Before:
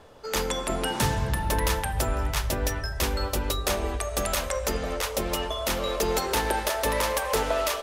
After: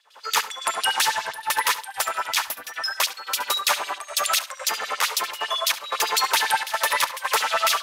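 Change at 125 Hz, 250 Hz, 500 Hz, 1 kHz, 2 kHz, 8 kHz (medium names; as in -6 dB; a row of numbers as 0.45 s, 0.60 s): under -25 dB, -18.0 dB, -6.5 dB, +5.5 dB, +7.0 dB, +5.5 dB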